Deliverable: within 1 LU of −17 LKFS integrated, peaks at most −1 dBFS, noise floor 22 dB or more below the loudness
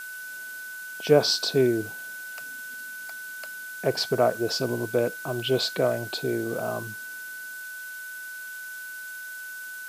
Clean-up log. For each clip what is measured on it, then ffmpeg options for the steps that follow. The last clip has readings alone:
interfering tone 1,500 Hz; level of the tone −36 dBFS; background noise floor −38 dBFS; target noise floor −51 dBFS; integrated loudness −28.5 LKFS; sample peak −6.0 dBFS; target loudness −17.0 LKFS
→ -af "bandreject=frequency=1500:width=30"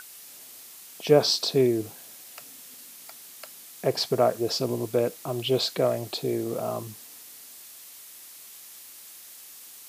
interfering tone none found; background noise floor −47 dBFS; target noise floor −48 dBFS
→ -af "afftdn=noise_reduction=6:noise_floor=-47"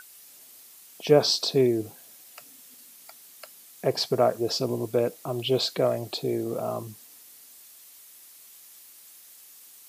background noise floor −51 dBFS; integrated loudness −25.5 LKFS; sample peak −6.0 dBFS; target loudness −17.0 LKFS
→ -af "volume=8.5dB,alimiter=limit=-1dB:level=0:latency=1"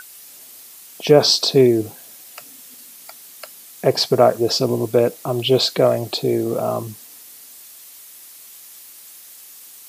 integrated loudness −17.5 LKFS; sample peak −1.0 dBFS; background noise floor −42 dBFS

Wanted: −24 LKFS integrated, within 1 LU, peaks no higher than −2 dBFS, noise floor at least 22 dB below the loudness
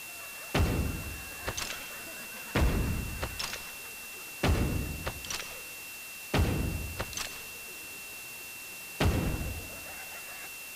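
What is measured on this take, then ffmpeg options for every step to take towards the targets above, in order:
interfering tone 2,700 Hz; level of the tone −44 dBFS; background noise floor −43 dBFS; target noise floor −57 dBFS; integrated loudness −34.5 LKFS; sample peak −18.0 dBFS; target loudness −24.0 LKFS
→ -af "bandreject=frequency=2700:width=30"
-af "afftdn=noise_reduction=14:noise_floor=-43"
-af "volume=10.5dB"

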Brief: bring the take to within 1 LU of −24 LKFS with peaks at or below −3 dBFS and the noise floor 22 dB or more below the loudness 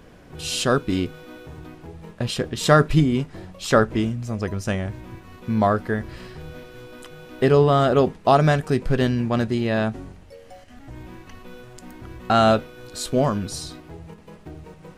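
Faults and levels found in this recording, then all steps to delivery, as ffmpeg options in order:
integrated loudness −21.5 LKFS; sample peak −2.5 dBFS; target loudness −24.0 LKFS
→ -af "volume=-2.5dB"

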